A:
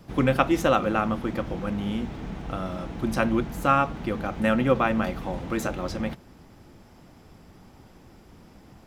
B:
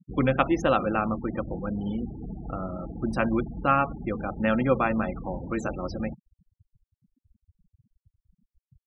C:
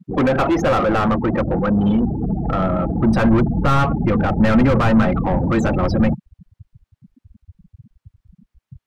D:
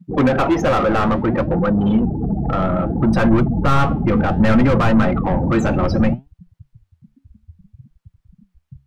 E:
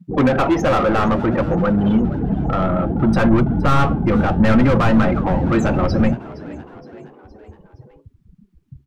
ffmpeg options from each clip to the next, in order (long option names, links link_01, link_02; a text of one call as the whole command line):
ffmpeg -i in.wav -af "afftfilt=real='re*gte(hypot(re,im),0.0316)':imag='im*gte(hypot(re,im),0.0316)':win_size=1024:overlap=0.75,volume=-1.5dB" out.wav
ffmpeg -i in.wav -filter_complex "[0:a]asplit=2[link_01][link_02];[link_02]highpass=frequency=720:poles=1,volume=31dB,asoftclip=type=tanh:threshold=-7dB[link_03];[link_01][link_03]amix=inputs=2:normalize=0,lowpass=frequency=1000:poles=1,volume=-6dB,asubboost=boost=4.5:cutoff=190" out.wav
ffmpeg -i in.wav -af "flanger=delay=5.7:depth=9:regen=77:speed=0.62:shape=sinusoidal,volume=5dB" out.wav
ffmpeg -i in.wav -filter_complex "[0:a]asplit=5[link_01][link_02][link_03][link_04][link_05];[link_02]adelay=467,afreqshift=70,volume=-18dB[link_06];[link_03]adelay=934,afreqshift=140,volume=-23.7dB[link_07];[link_04]adelay=1401,afreqshift=210,volume=-29.4dB[link_08];[link_05]adelay=1868,afreqshift=280,volume=-35dB[link_09];[link_01][link_06][link_07][link_08][link_09]amix=inputs=5:normalize=0" out.wav